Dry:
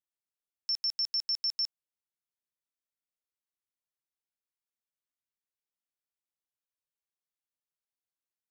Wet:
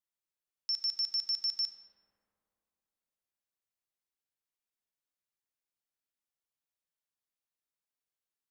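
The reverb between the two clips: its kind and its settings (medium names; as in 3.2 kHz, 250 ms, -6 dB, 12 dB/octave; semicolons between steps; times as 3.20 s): algorithmic reverb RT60 3 s, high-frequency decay 0.35×, pre-delay 0 ms, DRR 7.5 dB; trim -1.5 dB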